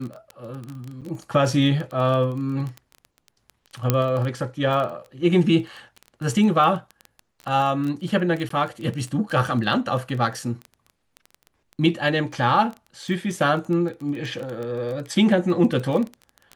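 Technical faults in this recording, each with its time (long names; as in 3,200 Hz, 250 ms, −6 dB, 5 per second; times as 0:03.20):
surface crackle 15 per second −27 dBFS
0:01.01–0:01.02: drop-out 7 ms
0:03.90: click −4 dBFS
0:08.49–0:08.50: drop-out 14 ms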